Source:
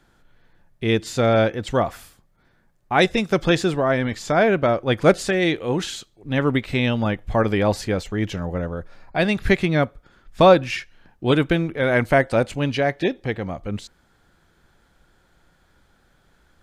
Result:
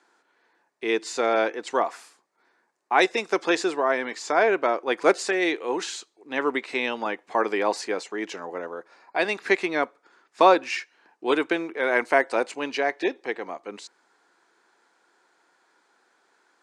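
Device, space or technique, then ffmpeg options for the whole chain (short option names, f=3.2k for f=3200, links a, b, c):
phone speaker on a table: -af "highpass=f=350:w=0.5412,highpass=f=350:w=1.3066,equalizer=f=570:t=q:w=4:g=-7,equalizer=f=1k:t=q:w=4:g=6,equalizer=f=3.3k:t=q:w=4:g=-7,lowpass=f=9k:w=0.5412,lowpass=f=9k:w=1.3066,equalizer=f=1.2k:w=1.5:g=-2.5"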